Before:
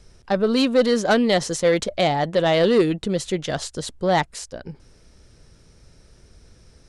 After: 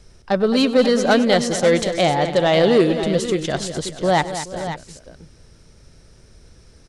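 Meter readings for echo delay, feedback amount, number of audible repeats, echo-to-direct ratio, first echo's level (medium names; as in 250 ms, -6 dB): 100 ms, no regular repeats, 4, -7.5 dB, -18.0 dB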